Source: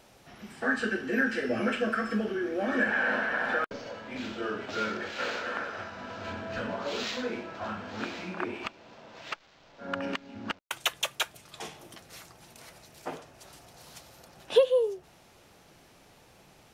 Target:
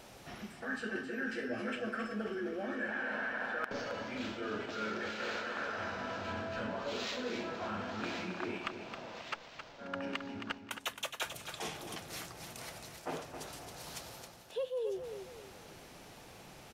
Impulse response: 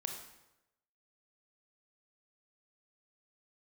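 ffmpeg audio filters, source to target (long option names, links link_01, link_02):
-af "areverse,acompressor=threshold=-40dB:ratio=6,areverse,aecho=1:1:268|536|804|1072:0.376|0.132|0.046|0.0161,volume=3.5dB"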